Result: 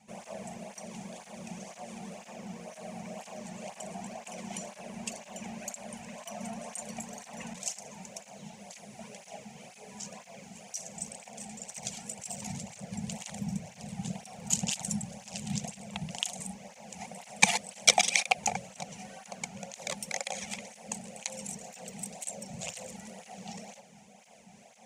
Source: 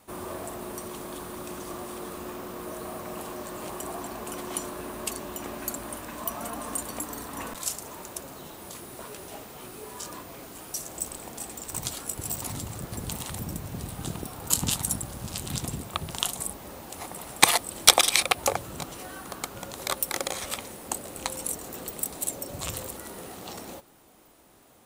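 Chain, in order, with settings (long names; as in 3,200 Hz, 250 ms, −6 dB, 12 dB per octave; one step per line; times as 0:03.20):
drawn EQ curve 100 Hz 0 dB, 210 Hz +13 dB, 310 Hz −20 dB, 490 Hz +1 dB, 750 Hz +6 dB, 1,200 Hz −12 dB, 2,300 Hz +7 dB, 3,900 Hz −3 dB, 6,500 Hz +8 dB, 16,000 Hz −25 dB
reversed playback
upward compression, threshold −40 dBFS
reversed playback
through-zero flanger with one copy inverted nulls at 2 Hz, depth 2 ms
level −4 dB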